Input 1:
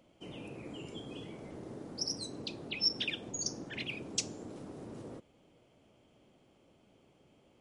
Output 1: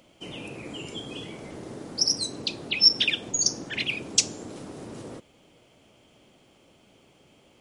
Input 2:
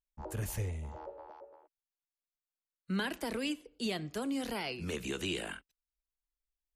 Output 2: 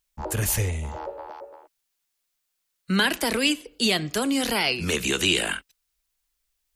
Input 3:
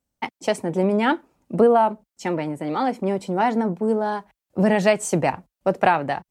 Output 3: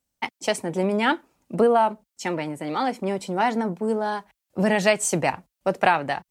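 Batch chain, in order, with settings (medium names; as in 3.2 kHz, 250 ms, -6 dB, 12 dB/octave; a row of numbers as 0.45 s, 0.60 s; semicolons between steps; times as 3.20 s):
tilt shelf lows -4 dB, about 1.4 kHz; normalise loudness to -24 LUFS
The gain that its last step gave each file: +9.5 dB, +14.0 dB, +0.5 dB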